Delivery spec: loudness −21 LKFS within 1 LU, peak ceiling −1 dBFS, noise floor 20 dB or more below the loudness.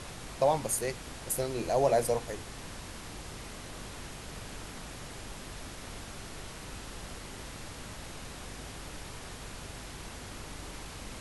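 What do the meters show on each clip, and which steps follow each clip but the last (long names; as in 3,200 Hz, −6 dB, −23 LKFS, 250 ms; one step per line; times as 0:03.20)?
mains hum 50 Hz; hum harmonics up to 250 Hz; level of the hum −49 dBFS; background noise floor −45 dBFS; target noise floor −57 dBFS; integrated loudness −36.5 LKFS; sample peak −14.0 dBFS; target loudness −21.0 LKFS
→ hum removal 50 Hz, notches 5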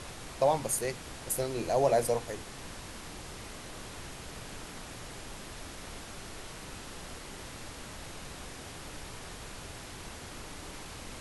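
mains hum none found; background noise floor −45 dBFS; target noise floor −57 dBFS
→ noise reduction from a noise print 12 dB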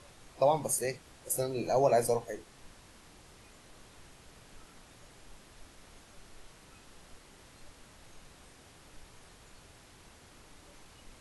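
background noise floor −57 dBFS; integrated loudness −30.5 LKFS; sample peak −14.0 dBFS; target loudness −21.0 LKFS
→ level +9.5 dB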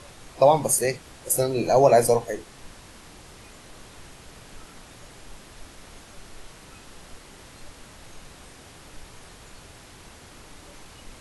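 integrated loudness −21.0 LKFS; sample peak −4.5 dBFS; background noise floor −48 dBFS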